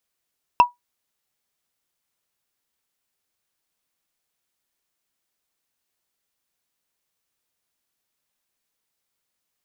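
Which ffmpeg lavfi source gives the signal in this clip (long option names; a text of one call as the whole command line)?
ffmpeg -f lavfi -i "aevalsrc='0.596*pow(10,-3*t/0.15)*sin(2*PI*971*t)+0.188*pow(10,-3*t/0.044)*sin(2*PI*2677*t)+0.0596*pow(10,-3*t/0.02)*sin(2*PI*5247.3*t)+0.0188*pow(10,-3*t/0.011)*sin(2*PI*8673.9*t)+0.00596*pow(10,-3*t/0.007)*sin(2*PI*12953.1*t)':duration=0.45:sample_rate=44100" out.wav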